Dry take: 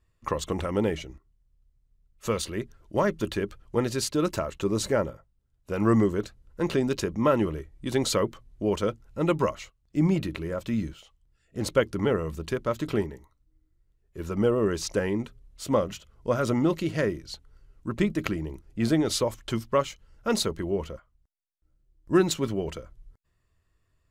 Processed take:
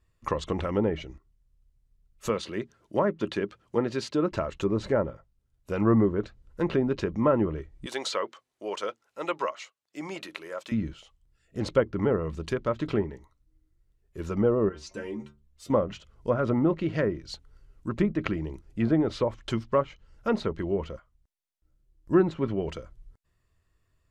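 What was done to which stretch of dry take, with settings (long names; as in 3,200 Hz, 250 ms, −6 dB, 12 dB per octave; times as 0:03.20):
0:02.29–0:04.32: high-pass filter 150 Hz
0:07.86–0:10.72: high-pass filter 620 Hz
0:14.69–0:15.70: stiff-string resonator 69 Hz, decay 0.37 s, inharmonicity 0.008
whole clip: treble cut that deepens with the level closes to 1,400 Hz, closed at −20.5 dBFS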